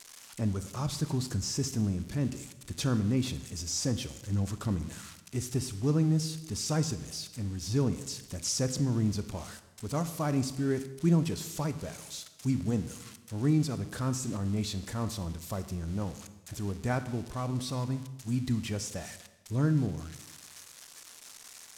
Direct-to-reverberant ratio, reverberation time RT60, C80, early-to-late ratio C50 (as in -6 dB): 11.0 dB, 1.1 s, 14.5 dB, 12.5 dB